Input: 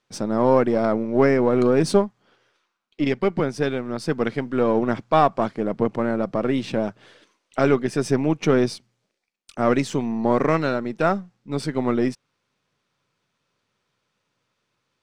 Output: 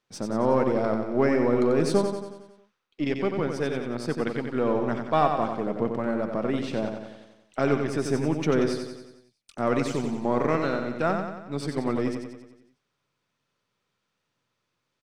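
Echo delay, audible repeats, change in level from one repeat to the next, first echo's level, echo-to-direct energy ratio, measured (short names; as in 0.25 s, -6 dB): 91 ms, 6, -5.0 dB, -6.0 dB, -4.5 dB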